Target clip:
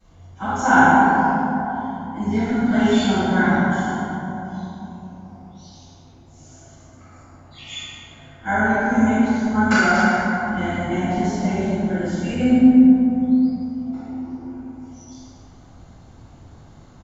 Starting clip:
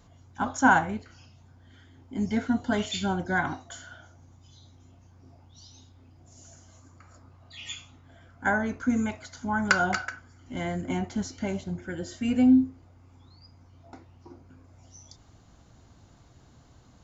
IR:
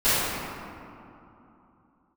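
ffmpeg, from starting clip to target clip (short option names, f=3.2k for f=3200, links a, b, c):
-filter_complex "[0:a]asplit=2[a][b];[b]adelay=105,volume=-9dB,highshelf=f=4k:g=-2.36[c];[a][c]amix=inputs=2:normalize=0[d];[1:a]atrim=start_sample=2205,asetrate=34398,aresample=44100[e];[d][e]afir=irnorm=-1:irlink=0,volume=-12.5dB"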